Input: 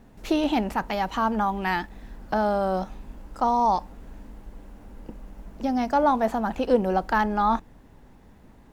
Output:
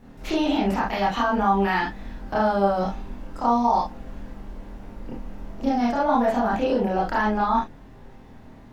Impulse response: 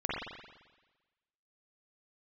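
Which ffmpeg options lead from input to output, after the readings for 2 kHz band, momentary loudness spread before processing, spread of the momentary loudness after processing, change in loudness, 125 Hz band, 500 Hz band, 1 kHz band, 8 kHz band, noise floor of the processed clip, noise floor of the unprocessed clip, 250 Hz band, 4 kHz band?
+2.5 dB, 15 LU, 20 LU, +1.5 dB, +3.5 dB, +1.5 dB, +1.5 dB, n/a, -46 dBFS, -52 dBFS, +2.5 dB, +3.0 dB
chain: -filter_complex "[0:a]alimiter=limit=-19dB:level=0:latency=1:release=60[a];[1:a]atrim=start_sample=2205,atrim=end_sample=6615,asetrate=74970,aresample=44100[b];[a][b]afir=irnorm=-1:irlink=0,volume=4.5dB"

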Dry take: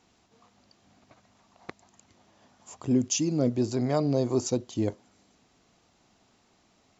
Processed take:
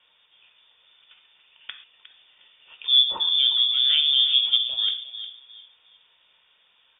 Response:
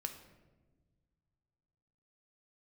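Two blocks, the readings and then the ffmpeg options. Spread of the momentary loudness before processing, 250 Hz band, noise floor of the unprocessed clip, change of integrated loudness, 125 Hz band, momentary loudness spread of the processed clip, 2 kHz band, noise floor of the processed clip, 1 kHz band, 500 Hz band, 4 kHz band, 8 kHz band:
6 LU, under -30 dB, -66 dBFS, +9.5 dB, under -35 dB, 17 LU, +7.0 dB, -63 dBFS, -4.0 dB, under -20 dB, +26.5 dB, n/a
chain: -filter_complex "[0:a]asplit=2[a][b];[b]adelay=358,lowpass=f=1.6k:p=1,volume=-11.5dB,asplit=2[c][d];[d]adelay=358,lowpass=f=1.6k:p=1,volume=0.3,asplit=2[e][f];[f]adelay=358,lowpass=f=1.6k:p=1,volume=0.3[g];[a][c][e][g]amix=inputs=4:normalize=0[h];[1:a]atrim=start_sample=2205,atrim=end_sample=6174[i];[h][i]afir=irnorm=-1:irlink=0,lowpass=f=3.1k:t=q:w=0.5098,lowpass=f=3.1k:t=q:w=0.6013,lowpass=f=3.1k:t=q:w=0.9,lowpass=f=3.1k:t=q:w=2.563,afreqshift=-3700,volume=6dB"

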